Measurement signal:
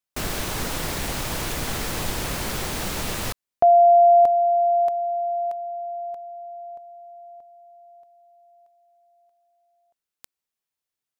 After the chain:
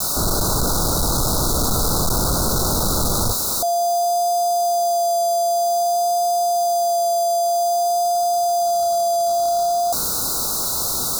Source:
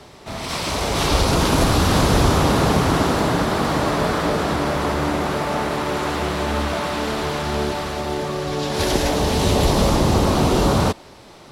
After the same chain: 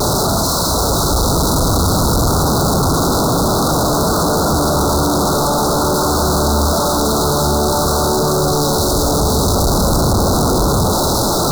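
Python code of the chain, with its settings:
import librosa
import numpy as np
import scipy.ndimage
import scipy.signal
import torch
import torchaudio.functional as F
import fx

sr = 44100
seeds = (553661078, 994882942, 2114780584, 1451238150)

y = np.sign(x) * np.sqrt(np.mean(np.square(x)))
y = scipy.signal.sosfilt(scipy.signal.ellip(4, 1.0, 80, [1400.0, 3900.0], 'bandstop', fs=sr, output='sos'), y)
y = fx.rider(y, sr, range_db=10, speed_s=0.5)
y = fx.low_shelf(y, sr, hz=220.0, db=4.0)
y = fx.vibrato(y, sr, rate_hz=0.52, depth_cents=15.0)
y = y * 10.0 ** (5.0 / 20.0)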